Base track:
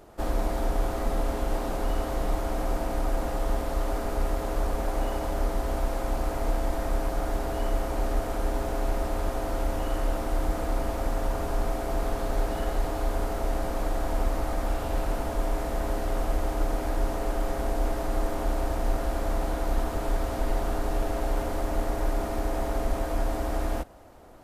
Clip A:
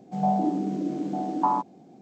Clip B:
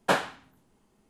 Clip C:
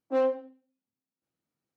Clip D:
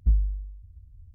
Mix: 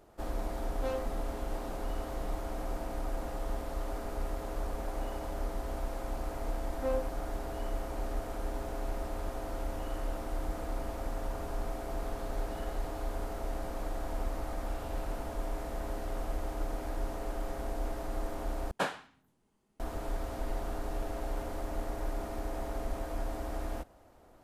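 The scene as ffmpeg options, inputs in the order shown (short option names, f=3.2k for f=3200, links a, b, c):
-filter_complex "[3:a]asplit=2[a][b];[0:a]volume=-8.5dB[c];[a]crystalizer=i=7:c=0[d];[c]asplit=2[e][f];[e]atrim=end=18.714[g];[2:a]atrim=end=1.09,asetpts=PTS-STARTPTS,volume=-8.5dB[h];[f]atrim=start=19.796[i];[d]atrim=end=1.76,asetpts=PTS-STARTPTS,volume=-12.5dB,afade=t=in:d=0.004:c=hsin,afade=t=out:st=1.756:d=0.004:c=hsin,adelay=700[j];[b]atrim=end=1.76,asetpts=PTS-STARTPTS,volume=-8dB,afade=t=in:d=0.004:c=hsin,afade=t=out:st=1.756:d=0.004:c=hsin,adelay=6700[k];[g][h]acrossfade=d=0.004:c1=hsin:c2=hsin[l];[l][i]acrossfade=d=0.004:c1=hsin:c2=hsin[m];[m][j][k]amix=inputs=3:normalize=0"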